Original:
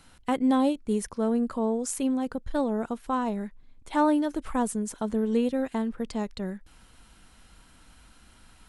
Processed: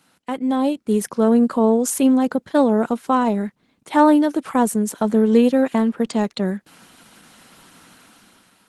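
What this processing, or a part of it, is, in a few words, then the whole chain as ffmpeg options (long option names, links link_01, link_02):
video call: -af "highpass=frequency=150:width=0.5412,highpass=frequency=150:width=1.3066,dynaudnorm=framelen=240:gausssize=7:maxgain=12dB" -ar 48000 -c:a libopus -b:a 16k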